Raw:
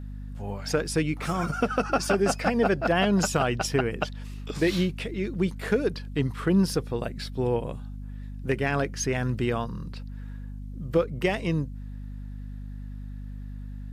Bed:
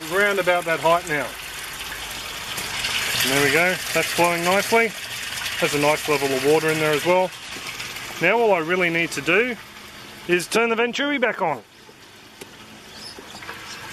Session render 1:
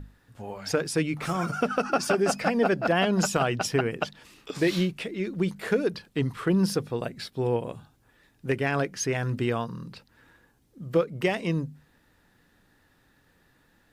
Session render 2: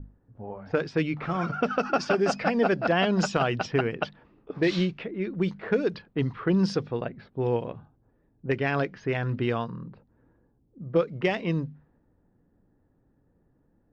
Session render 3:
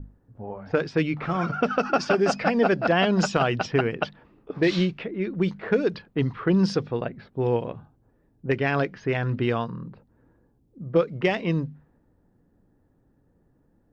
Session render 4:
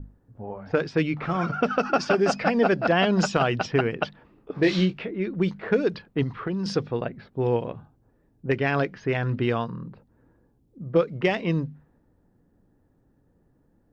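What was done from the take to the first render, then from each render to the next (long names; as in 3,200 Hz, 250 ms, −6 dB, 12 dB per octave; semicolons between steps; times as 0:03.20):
mains-hum notches 50/100/150/200/250 Hz
low-pass filter 5,800 Hz 24 dB per octave; low-pass that shuts in the quiet parts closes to 510 Hz, open at −19.5 dBFS
level +2.5 dB
0:04.56–0:05.14: double-tracking delay 21 ms −8.5 dB; 0:06.23–0:06.66: downward compressor 10 to 1, threshold −24 dBFS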